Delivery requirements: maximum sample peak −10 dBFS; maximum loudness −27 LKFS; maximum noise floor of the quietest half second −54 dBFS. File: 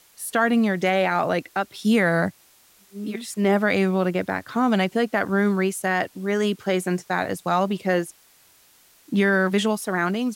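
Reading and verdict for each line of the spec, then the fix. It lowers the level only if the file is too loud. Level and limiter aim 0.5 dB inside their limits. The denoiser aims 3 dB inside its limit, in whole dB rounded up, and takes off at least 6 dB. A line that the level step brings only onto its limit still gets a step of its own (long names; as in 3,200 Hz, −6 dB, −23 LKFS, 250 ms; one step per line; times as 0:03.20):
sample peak −8.0 dBFS: out of spec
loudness −22.5 LKFS: out of spec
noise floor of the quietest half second −56 dBFS: in spec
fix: level −5 dB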